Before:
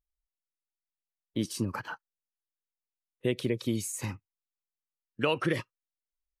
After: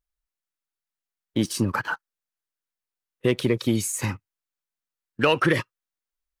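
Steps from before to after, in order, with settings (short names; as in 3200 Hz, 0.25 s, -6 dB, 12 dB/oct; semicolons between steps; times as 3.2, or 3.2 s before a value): bell 1500 Hz +4.5 dB 0.8 oct; sample leveller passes 1; gain +4 dB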